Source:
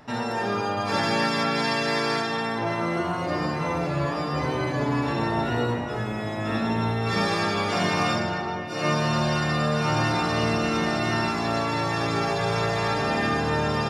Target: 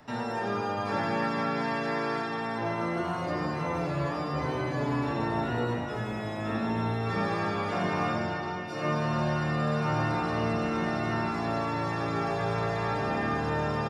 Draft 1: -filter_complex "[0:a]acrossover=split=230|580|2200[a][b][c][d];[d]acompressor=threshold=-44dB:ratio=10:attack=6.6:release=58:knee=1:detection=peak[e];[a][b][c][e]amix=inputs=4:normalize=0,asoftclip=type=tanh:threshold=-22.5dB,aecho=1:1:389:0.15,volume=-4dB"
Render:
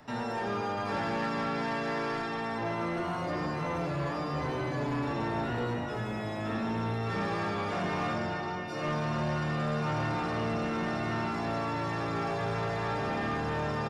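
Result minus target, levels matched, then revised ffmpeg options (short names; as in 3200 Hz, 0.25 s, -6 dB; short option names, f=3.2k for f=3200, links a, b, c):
soft clip: distortion +18 dB
-filter_complex "[0:a]acrossover=split=230|580|2200[a][b][c][d];[d]acompressor=threshold=-44dB:ratio=10:attack=6.6:release=58:knee=1:detection=peak[e];[a][b][c][e]amix=inputs=4:normalize=0,asoftclip=type=tanh:threshold=-10.5dB,aecho=1:1:389:0.15,volume=-4dB"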